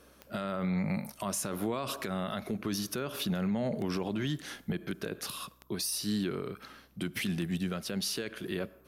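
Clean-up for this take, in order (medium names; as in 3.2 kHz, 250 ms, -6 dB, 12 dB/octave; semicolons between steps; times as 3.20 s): de-click; de-hum 63 Hz, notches 4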